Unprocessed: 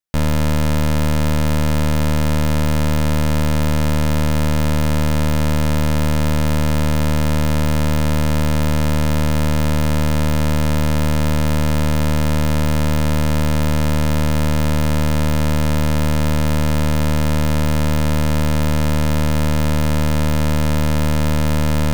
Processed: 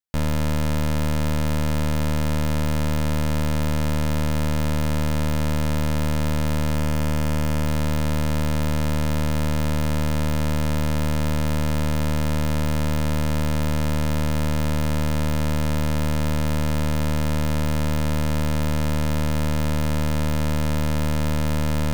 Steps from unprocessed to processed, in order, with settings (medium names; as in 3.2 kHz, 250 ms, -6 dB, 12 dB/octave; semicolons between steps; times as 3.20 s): 6.76–7.67 s: band-stop 3.9 kHz, Q 8.3; trim -5.5 dB